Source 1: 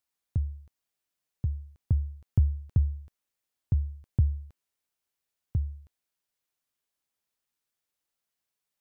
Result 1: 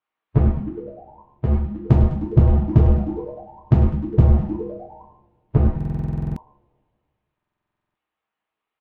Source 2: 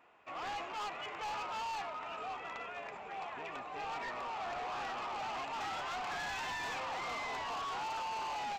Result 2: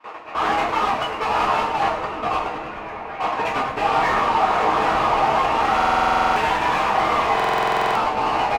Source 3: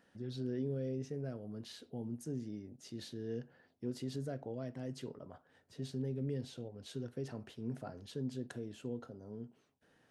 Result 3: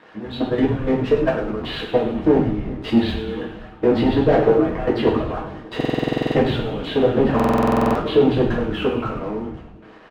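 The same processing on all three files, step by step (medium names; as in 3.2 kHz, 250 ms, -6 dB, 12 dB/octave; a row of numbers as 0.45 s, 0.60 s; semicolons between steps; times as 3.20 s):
inverse Chebyshev low-pass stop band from 6.3 kHz, stop band 40 dB; harmonic-percussive split harmonic -14 dB; peaking EQ 1.1 kHz +4 dB 0.22 oct; waveshaping leveller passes 3; level held to a coarse grid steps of 20 dB; overdrive pedal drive 33 dB, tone 1.1 kHz, clips at -15 dBFS; on a send: frequency-shifting echo 102 ms, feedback 64%, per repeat -140 Hz, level -9 dB; on the sum: two-slope reverb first 0.41 s, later 2.2 s, from -27 dB, DRR -4.5 dB; buffer glitch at 5.76/7.35 s, samples 2048, times 12; normalise loudness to -20 LUFS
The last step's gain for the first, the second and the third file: +7.5 dB, -0.5 dB, +6.5 dB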